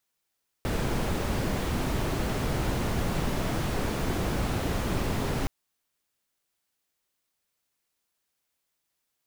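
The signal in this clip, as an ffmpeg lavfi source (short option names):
-f lavfi -i "anoisesrc=c=brown:a=0.197:d=4.82:r=44100:seed=1"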